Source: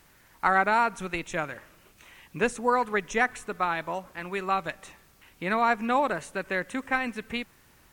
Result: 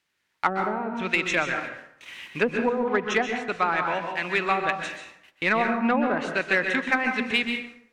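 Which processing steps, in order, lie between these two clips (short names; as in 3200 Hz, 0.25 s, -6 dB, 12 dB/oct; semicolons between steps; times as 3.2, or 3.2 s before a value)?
treble ducked by the level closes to 400 Hz, closed at -19 dBFS; weighting filter D; gate -44 dBFS, range -25 dB; high shelf 2600 Hz -4.5 dB; in parallel at -3 dB: soft clip -21.5 dBFS, distortion -11 dB; on the sum: plate-style reverb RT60 0.72 s, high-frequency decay 0.6×, pre-delay 0.115 s, DRR 4.5 dB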